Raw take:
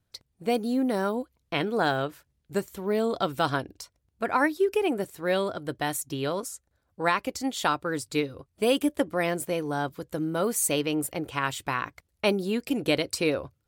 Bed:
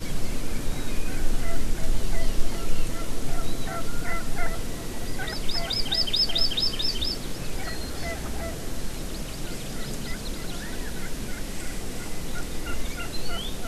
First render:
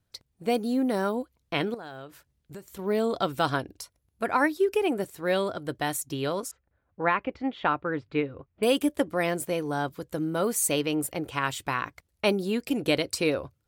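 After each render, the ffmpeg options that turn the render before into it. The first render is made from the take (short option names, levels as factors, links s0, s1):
-filter_complex "[0:a]asettb=1/sr,asplit=3[s0][s1][s2];[s0]atrim=end=1.744[s3];[s1]atrim=start=1.74:end=2.79,asetpts=PTS-STARTPTS,afade=t=in:d=0.004:c=qsin,afade=t=out:st=1.046:d=0.004:c=qsin,acompressor=threshold=0.01:ratio=4:attack=3.2:release=140:knee=1:detection=peak[s4];[s2]atrim=start=2.786[s5];[s3][s4]acrossfade=d=0.004:c1=hsin:c2=qsin[s6];[s6][s5]acrossfade=d=0.004:c1=qsin:c2=hsin,asettb=1/sr,asplit=3[s7][s8][s9];[s7]atrim=end=3.784[s10];[s8]atrim=start=3.78:end=4.27,asetpts=PTS-STARTPTS,afade=t=in:d=0.004:c=qsin,afade=t=out:st=0.486:d=0.004:c=qsin,equalizer=f=11000:w=4.8:g=11.5[s11];[s9]atrim=start=4.266[s12];[s10][s11]acrossfade=d=0.004:c1=hsin:c2=qsin[s13];[s13][s12]acrossfade=d=0.004:c1=qsin:c2=hsin,asettb=1/sr,asplit=3[s14][s15][s16];[s14]atrim=end=6.514[s17];[s15]atrim=start=6.51:end=8.63,asetpts=PTS-STARTPTS,afade=t=in:d=0.004:c=qsin,afade=t=out:st=2.116:d=0.004:c=qsin,lowpass=f=2700:w=0.5412,lowpass=f=2700:w=1.3066[s18];[s16]atrim=start=8.626[s19];[s17][s18]acrossfade=d=0.004:c1=hsin:c2=qsin[s20];[s20][s19]acrossfade=d=0.004:c1=qsin:c2=hsin"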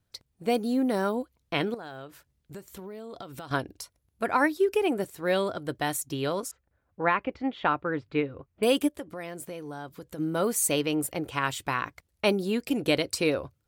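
-filter_complex "[0:a]asettb=1/sr,asplit=3[s0][s1][s2];[s0]atrim=end=2.724[s3];[s1]atrim=start=2.72:end=3.51,asetpts=PTS-STARTPTS,afade=t=in:d=0.004:c=qsin,afade=t=out:st=0.786:d=0.004:c=qsin,acompressor=threshold=0.0158:ratio=16:attack=3.2:release=140:knee=1:detection=peak[s4];[s2]atrim=start=3.506[s5];[s3][s4]acrossfade=d=0.004:c1=hsin:c2=qsin[s6];[s6][s5]acrossfade=d=0.004:c1=qsin:c2=hsin,asplit=3[s7][s8][s9];[s7]afade=t=out:st=8.87:d=0.02[s10];[s8]acompressor=threshold=0.0112:ratio=2.5:attack=3.2:release=140:knee=1:detection=peak,afade=t=in:st=8.87:d=0.02,afade=t=out:st=10.18:d=0.02[s11];[s9]afade=t=in:st=10.18:d=0.02[s12];[s10][s11][s12]amix=inputs=3:normalize=0"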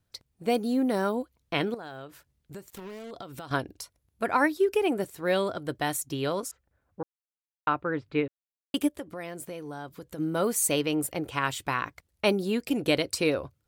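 -filter_complex "[0:a]asettb=1/sr,asplit=3[s0][s1][s2];[s0]atrim=end=2.704[s3];[s1]atrim=start=2.7:end=3.11,asetpts=PTS-STARTPTS,afade=t=in:d=0.004:c=qsin,afade=t=out:st=0.406:d=0.004:c=qsin,acrusher=bits=6:mix=0:aa=0.5[s4];[s2]atrim=start=3.106[s5];[s3][s4]acrossfade=d=0.004:c1=hsin:c2=qsin[s6];[s6][s5]acrossfade=d=0.004:c1=qsin:c2=hsin,asplit=5[s7][s8][s9][s10][s11];[s7]atrim=end=7.03,asetpts=PTS-STARTPTS,afade=t=out:st=7.026:d=0.004:c=hsin[s12];[s8]atrim=start=7.03:end=7.67,asetpts=PTS-STARTPTS,volume=0[s13];[s9]atrim=start=7.67:end=8.28,asetpts=PTS-STARTPTS,afade=t=in:d=0.004:c=hsin,afade=t=out:st=0.606:d=0.004:c=hsin[s14];[s10]atrim=start=8.28:end=8.74,asetpts=PTS-STARTPTS,volume=0[s15];[s11]atrim=start=8.74,asetpts=PTS-STARTPTS,afade=t=in:d=0.004:c=hsin[s16];[s12][s13][s14][s15][s16]concat=n=5:v=0:a=1"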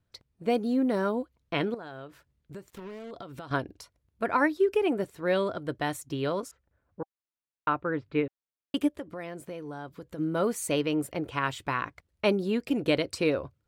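-af "lowpass=f=2900:p=1,bandreject=f=780:w=12"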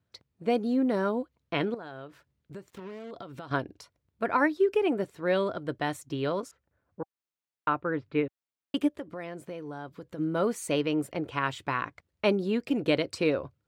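-af "highpass=84,equalizer=f=13000:w=0.56:g=-7"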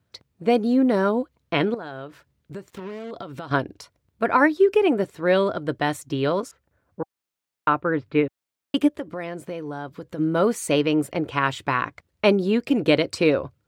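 -af "volume=2.24"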